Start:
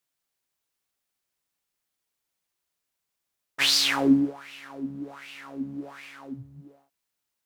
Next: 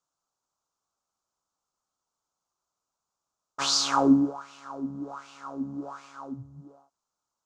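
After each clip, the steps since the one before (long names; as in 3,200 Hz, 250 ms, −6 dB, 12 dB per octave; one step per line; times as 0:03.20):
drawn EQ curve 430 Hz 0 dB, 910 Hz +7 dB, 1,300 Hz +8 dB, 1,900 Hz −17 dB, 6,800 Hz +3 dB, 12,000 Hz −23 dB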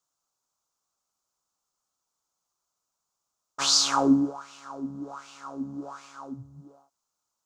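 high-shelf EQ 4,000 Hz +7.5 dB
level −1 dB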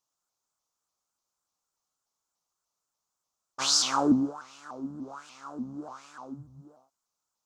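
pitch modulation by a square or saw wave saw up 3.4 Hz, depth 160 cents
level −2.5 dB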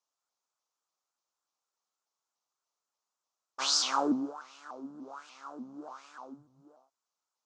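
band-pass filter 330–6,300 Hz
level −2 dB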